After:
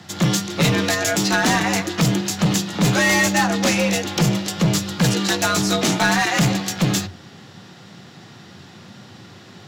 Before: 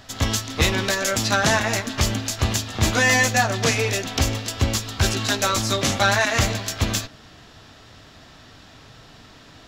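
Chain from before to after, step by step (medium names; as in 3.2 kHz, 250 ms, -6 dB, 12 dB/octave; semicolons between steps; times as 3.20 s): bass shelf 100 Hz +8.5 dB; frequency shift +87 Hz; overload inside the chain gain 14.5 dB; trim +2 dB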